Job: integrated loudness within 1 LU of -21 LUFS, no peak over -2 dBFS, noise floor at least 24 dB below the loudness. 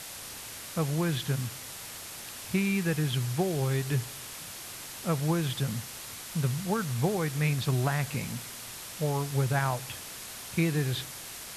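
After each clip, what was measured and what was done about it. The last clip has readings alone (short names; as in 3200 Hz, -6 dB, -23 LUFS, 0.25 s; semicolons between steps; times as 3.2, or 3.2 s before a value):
noise floor -43 dBFS; noise floor target -55 dBFS; loudness -31.0 LUFS; peak -14.5 dBFS; loudness target -21.0 LUFS
-> denoiser 12 dB, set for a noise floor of -43 dBFS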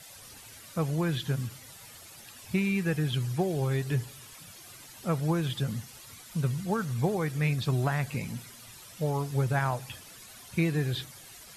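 noise floor -50 dBFS; noise floor target -55 dBFS
-> denoiser 6 dB, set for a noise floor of -50 dBFS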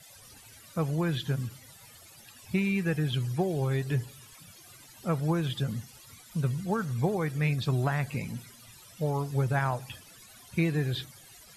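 noise floor -53 dBFS; noise floor target -55 dBFS
-> denoiser 6 dB, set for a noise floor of -53 dBFS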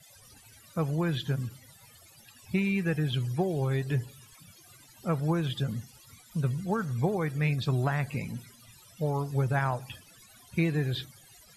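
noise floor -56 dBFS; loudness -30.5 LUFS; peak -15.0 dBFS; loudness target -21.0 LUFS
-> gain +9.5 dB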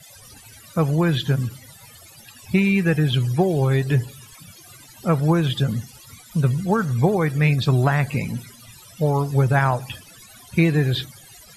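loudness -21.0 LUFS; peak -5.5 dBFS; noise floor -47 dBFS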